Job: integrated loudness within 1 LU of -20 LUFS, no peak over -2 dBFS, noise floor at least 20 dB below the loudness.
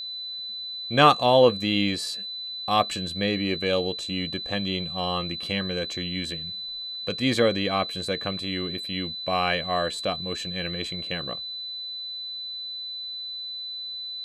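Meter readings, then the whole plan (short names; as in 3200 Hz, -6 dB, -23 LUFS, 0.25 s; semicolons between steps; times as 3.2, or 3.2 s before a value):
ticks 33/s; steady tone 4000 Hz; tone level -32 dBFS; loudness -26.0 LUFS; peak -3.5 dBFS; loudness target -20.0 LUFS
-> de-click; notch 4000 Hz, Q 30; gain +6 dB; limiter -2 dBFS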